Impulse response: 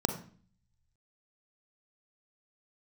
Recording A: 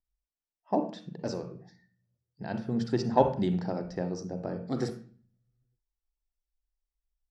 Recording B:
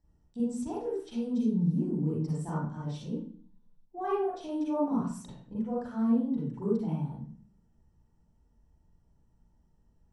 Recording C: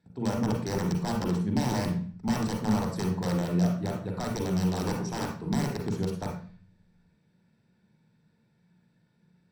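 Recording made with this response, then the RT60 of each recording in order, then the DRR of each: A; 0.45, 0.45, 0.45 seconds; 6.5, −7.5, 0.5 decibels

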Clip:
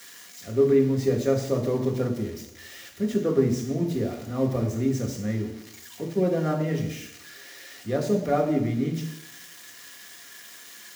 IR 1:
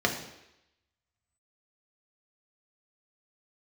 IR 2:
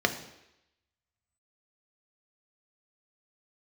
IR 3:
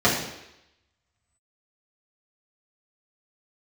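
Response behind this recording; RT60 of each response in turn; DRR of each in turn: 1; 0.85, 0.85, 0.85 seconds; 1.0, 5.5, −8.0 decibels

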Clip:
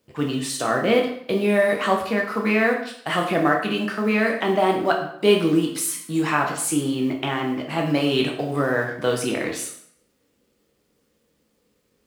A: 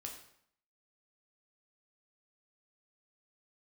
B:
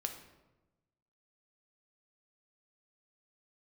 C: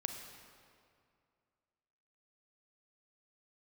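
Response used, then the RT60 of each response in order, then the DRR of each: A; 0.65, 1.1, 2.3 seconds; 0.5, 4.5, 4.5 decibels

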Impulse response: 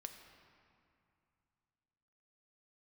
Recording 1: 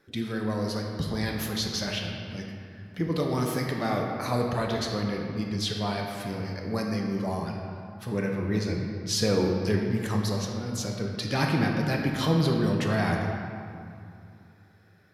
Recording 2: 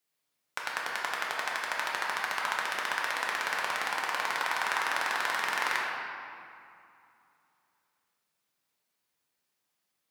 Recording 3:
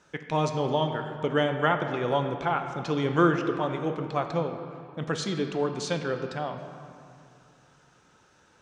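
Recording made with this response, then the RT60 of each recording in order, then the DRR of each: 3; 2.5, 2.5, 2.5 seconds; 0.0, −4.0, 5.5 decibels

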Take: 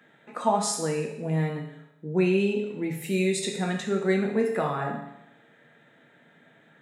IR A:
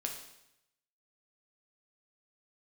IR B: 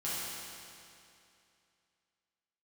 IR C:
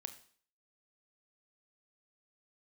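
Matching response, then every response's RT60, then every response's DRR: A; 0.85, 2.6, 0.50 seconds; 1.0, −10.5, 8.5 decibels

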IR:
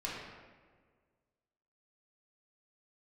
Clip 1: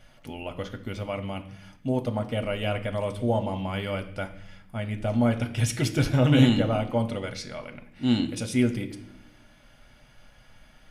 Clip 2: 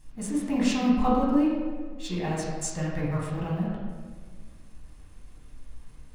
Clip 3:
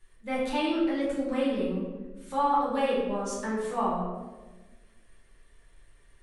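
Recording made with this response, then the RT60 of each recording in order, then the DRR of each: 2; 0.75, 1.6, 1.3 seconds; 5.5, −6.5, −8.0 decibels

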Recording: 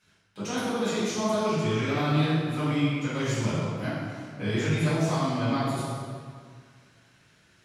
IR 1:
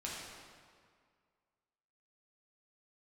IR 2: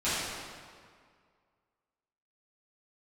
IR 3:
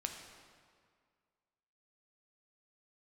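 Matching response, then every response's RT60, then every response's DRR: 2; 2.0, 2.0, 2.0 seconds; −6.0, −15.0, 3.0 decibels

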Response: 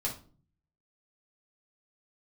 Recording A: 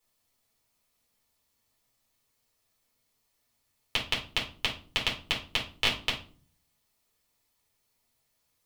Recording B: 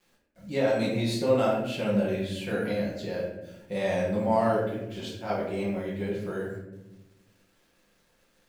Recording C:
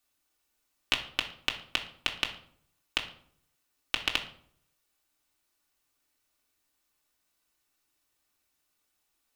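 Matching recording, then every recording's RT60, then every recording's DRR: A; 0.40, 1.0, 0.60 seconds; −4.0, −6.0, 0.0 decibels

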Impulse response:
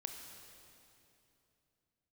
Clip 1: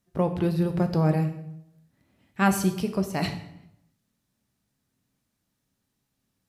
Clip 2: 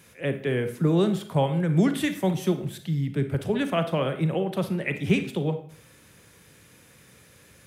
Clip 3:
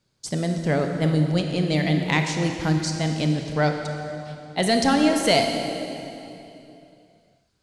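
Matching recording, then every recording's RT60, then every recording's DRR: 3; 0.80, 0.55, 2.9 seconds; 6.5, 8.5, 4.0 decibels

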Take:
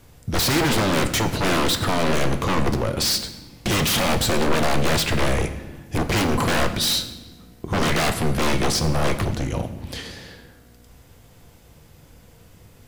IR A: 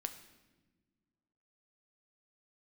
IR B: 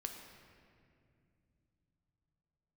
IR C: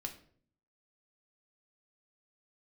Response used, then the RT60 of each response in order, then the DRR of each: A; non-exponential decay, 2.4 s, 0.55 s; 7.0, 3.0, 2.5 decibels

